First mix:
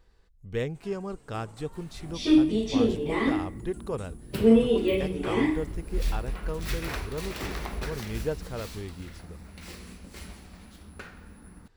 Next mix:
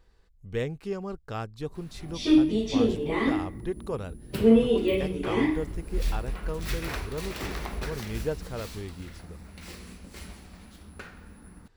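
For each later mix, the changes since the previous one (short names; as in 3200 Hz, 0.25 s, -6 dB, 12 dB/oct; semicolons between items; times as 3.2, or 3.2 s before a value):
first sound: muted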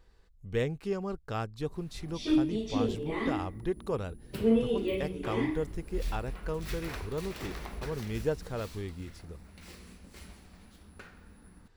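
background -6.5 dB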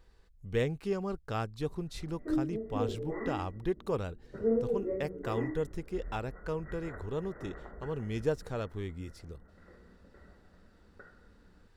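background: add rippled Chebyshev low-pass 2000 Hz, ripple 9 dB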